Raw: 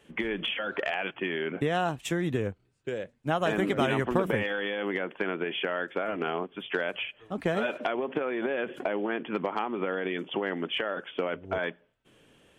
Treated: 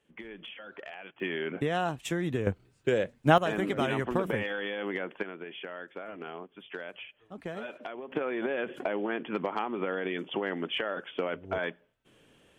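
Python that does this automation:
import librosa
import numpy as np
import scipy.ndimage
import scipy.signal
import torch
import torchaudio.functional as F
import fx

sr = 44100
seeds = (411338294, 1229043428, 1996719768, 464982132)

y = fx.gain(x, sr, db=fx.steps((0.0, -13.5), (1.2, -2.0), (2.47, 7.0), (3.38, -3.0), (5.23, -10.5), (8.12, -1.5)))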